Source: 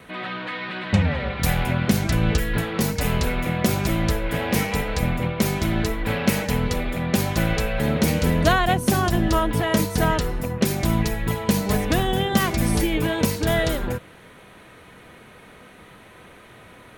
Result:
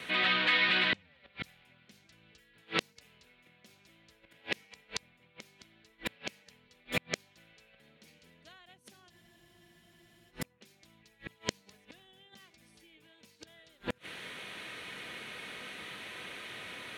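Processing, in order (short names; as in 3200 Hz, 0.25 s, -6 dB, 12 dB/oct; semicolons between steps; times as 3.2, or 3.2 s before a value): flipped gate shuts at -16 dBFS, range -38 dB; weighting filter D; spectral freeze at 9.13, 1.17 s; gain -2.5 dB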